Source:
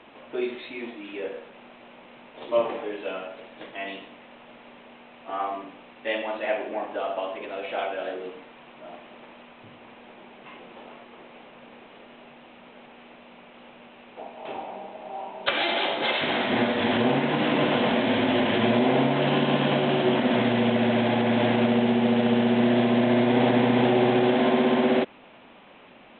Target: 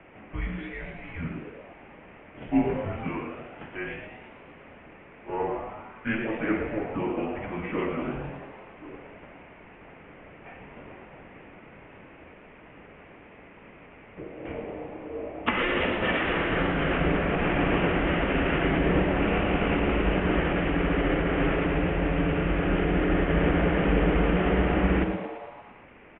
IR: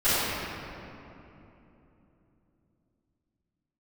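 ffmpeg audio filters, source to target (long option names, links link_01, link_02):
-filter_complex "[0:a]asplit=8[link_01][link_02][link_03][link_04][link_05][link_06][link_07][link_08];[link_02]adelay=113,afreqshift=130,volume=-9dB[link_09];[link_03]adelay=226,afreqshift=260,volume=-13.4dB[link_10];[link_04]adelay=339,afreqshift=390,volume=-17.9dB[link_11];[link_05]adelay=452,afreqshift=520,volume=-22.3dB[link_12];[link_06]adelay=565,afreqshift=650,volume=-26.7dB[link_13];[link_07]adelay=678,afreqshift=780,volume=-31.2dB[link_14];[link_08]adelay=791,afreqshift=910,volume=-35.6dB[link_15];[link_01][link_09][link_10][link_11][link_12][link_13][link_14][link_15]amix=inputs=8:normalize=0,highpass=frequency=370:width_type=q:width=0.5412,highpass=frequency=370:width_type=q:width=1.307,lowpass=frequency=3000:width_type=q:width=0.5176,lowpass=frequency=3000:width_type=q:width=0.7071,lowpass=frequency=3000:width_type=q:width=1.932,afreqshift=-320"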